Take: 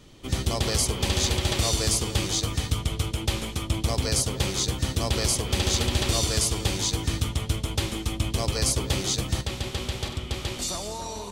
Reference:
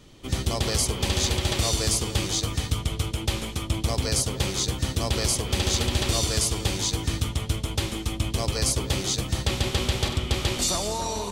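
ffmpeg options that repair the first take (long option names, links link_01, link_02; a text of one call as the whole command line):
ffmpeg -i in.wav -af "asetnsamples=nb_out_samples=441:pad=0,asendcmd='9.41 volume volume 5.5dB',volume=0dB" out.wav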